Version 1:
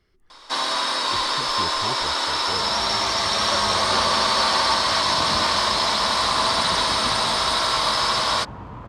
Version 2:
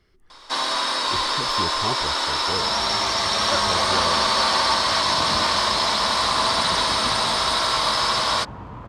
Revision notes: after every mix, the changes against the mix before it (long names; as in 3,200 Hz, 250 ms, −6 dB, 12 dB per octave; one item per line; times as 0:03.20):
speech +3.5 dB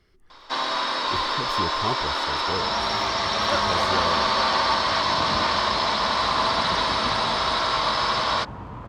first sound: add high-frequency loss of the air 130 metres